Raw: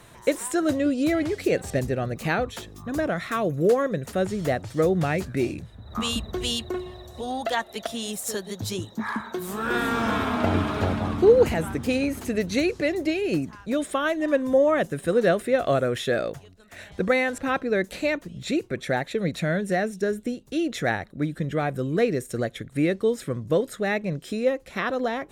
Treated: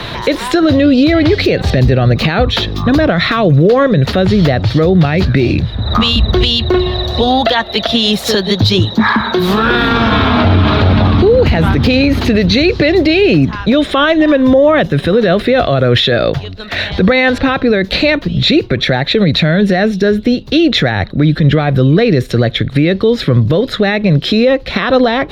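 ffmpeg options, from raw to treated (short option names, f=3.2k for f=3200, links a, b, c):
-filter_complex "[0:a]asettb=1/sr,asplit=3[a][b][c];[a]atrim=end=13.274[d];[b]atrim=start=13.27:end=15.37,asetpts=PTS-STARTPTS,afade=t=in:d=0.004:c=qsin,afade=t=out:st=2.096:d=0.004:c=qsin,bandreject=f=4.5k:w=9.9[e];[c]atrim=start=15.366[f];[d][e]acrossfade=d=0.004:c1=hsin:c2=qsin[g];[g][f]acrossfade=d=0.004:c1=qsin:c2=hsin,highshelf=f=5.8k:t=q:w=3:g=-13.5,acrossover=split=140[h][i];[i]acompressor=threshold=-47dB:ratio=1.5[j];[h][j]amix=inputs=2:normalize=0,alimiter=level_in=27.5dB:limit=-1dB:release=50:level=0:latency=1,volume=-1dB"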